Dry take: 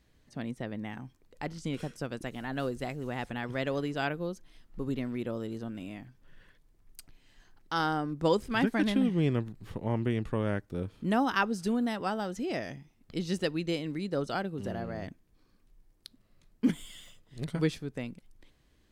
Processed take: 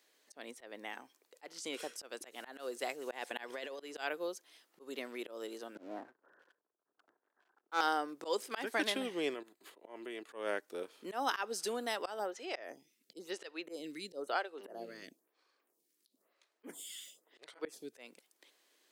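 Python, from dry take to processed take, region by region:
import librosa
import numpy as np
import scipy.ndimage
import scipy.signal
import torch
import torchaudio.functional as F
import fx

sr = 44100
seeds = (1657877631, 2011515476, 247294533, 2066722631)

y = fx.chain(x, sr, fx.notch(hz=1300.0, q=10.0),
    fx.over_compress(threshold_db=-35.0, ratio=-0.5), at=(3.07, 3.8))
y = fx.chain(y, sr, fx.steep_lowpass(hz=1600.0, slope=72),
    fx.leveller(passes=2),
    fx.band_widen(depth_pct=40), at=(5.75, 7.81))
y = fx.chain(y, sr, fx.notch(hz=5600.0, q=5.7),
    fx.comb(ms=3.0, depth=0.32),
    fx.level_steps(step_db=12), at=(9.34, 10.29))
y = fx.chain(y, sr, fx.low_shelf(hz=200.0, db=10.5),
    fx.stagger_phaser(hz=1.0), at=(12.19, 17.93))
y = scipy.signal.sosfilt(scipy.signal.butter(4, 380.0, 'highpass', fs=sr, output='sos'), y)
y = fx.high_shelf(y, sr, hz=3700.0, db=8.0)
y = fx.auto_swell(y, sr, attack_ms=169.0)
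y = F.gain(torch.from_numpy(y), -1.0).numpy()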